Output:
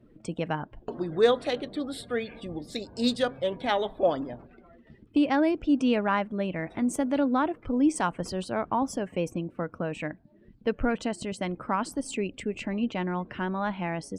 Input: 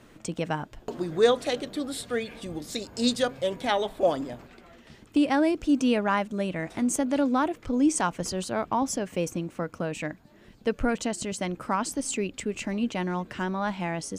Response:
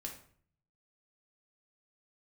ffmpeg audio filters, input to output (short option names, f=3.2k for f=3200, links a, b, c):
-filter_complex "[0:a]afftdn=nr=18:nf=-49,equalizer=f=6.6k:w=2.8:g=-8,asplit=2[a][b];[b]adynamicsmooth=sensitivity=4:basefreq=6.7k,volume=-2.5dB[c];[a][c]amix=inputs=2:normalize=0,volume=-5.5dB"